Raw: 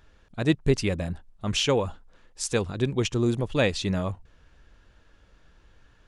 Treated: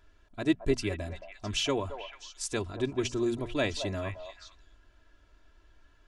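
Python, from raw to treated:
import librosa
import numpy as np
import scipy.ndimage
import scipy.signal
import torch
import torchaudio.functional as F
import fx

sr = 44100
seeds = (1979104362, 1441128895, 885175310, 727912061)

p1 = fx.hum_notches(x, sr, base_hz=60, count=4)
p2 = p1 + 0.67 * np.pad(p1, (int(3.0 * sr / 1000.0), 0))[:len(p1)]
p3 = p2 + fx.echo_stepped(p2, sr, ms=220, hz=730.0, octaves=1.4, feedback_pct=70, wet_db=-6, dry=0)
y = F.gain(torch.from_numpy(p3), -6.5).numpy()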